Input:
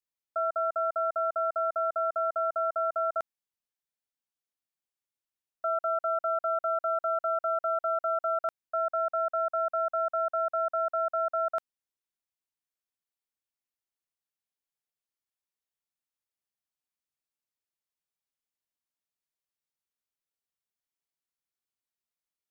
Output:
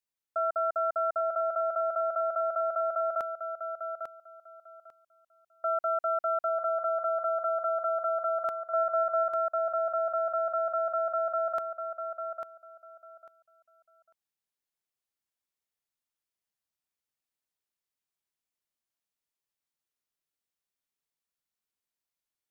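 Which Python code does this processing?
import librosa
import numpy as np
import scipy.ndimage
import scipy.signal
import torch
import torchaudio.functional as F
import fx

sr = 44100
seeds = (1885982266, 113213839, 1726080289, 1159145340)

y = fx.echo_feedback(x, sr, ms=847, feedback_pct=19, wet_db=-7.0)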